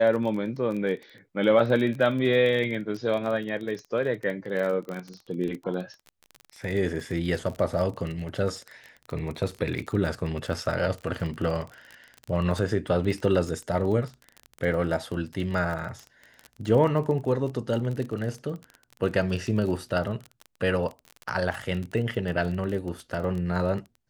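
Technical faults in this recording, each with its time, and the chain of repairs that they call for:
crackle 26 per s -31 dBFS
4.89 s: pop -25 dBFS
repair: de-click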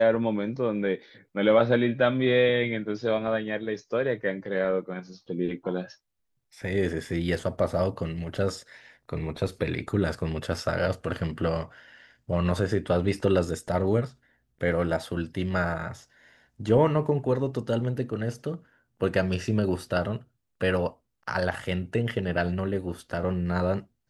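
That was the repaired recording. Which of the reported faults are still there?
nothing left

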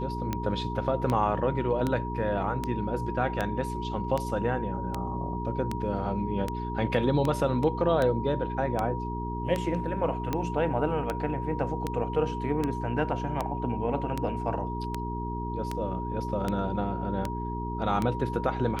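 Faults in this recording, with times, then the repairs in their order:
hum 60 Hz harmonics 7 -34 dBFS
tick 78 rpm -15 dBFS
whine 950 Hz -35 dBFS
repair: de-click; band-stop 950 Hz, Q 30; de-hum 60 Hz, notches 7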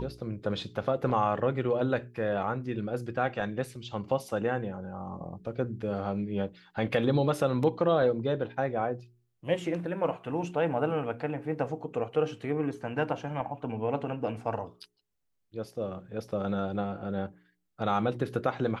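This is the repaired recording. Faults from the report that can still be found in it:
nothing left

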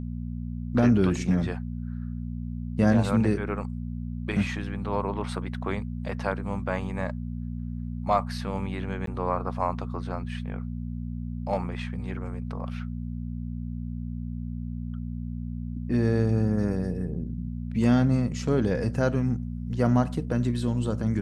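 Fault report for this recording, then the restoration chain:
hum 60 Hz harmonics 4 -33 dBFS
9.06–9.07 s: dropout 13 ms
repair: de-hum 60 Hz, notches 4; interpolate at 9.06 s, 13 ms

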